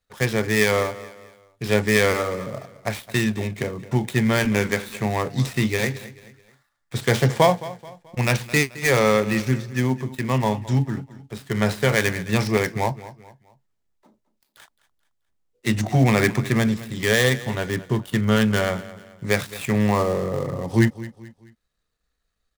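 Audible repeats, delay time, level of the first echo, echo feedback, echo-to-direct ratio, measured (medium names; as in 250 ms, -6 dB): 3, 216 ms, -17.0 dB, 39%, -16.5 dB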